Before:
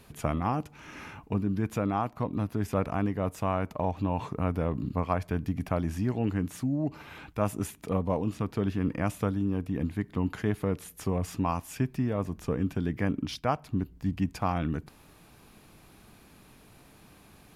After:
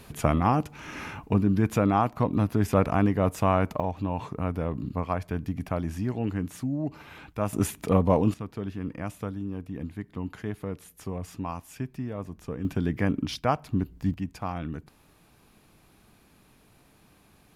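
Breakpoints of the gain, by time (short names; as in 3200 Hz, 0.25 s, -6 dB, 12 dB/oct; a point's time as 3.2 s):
+6 dB
from 3.8 s -0.5 dB
from 7.53 s +7 dB
from 8.34 s -5 dB
from 12.65 s +3 dB
from 14.14 s -4 dB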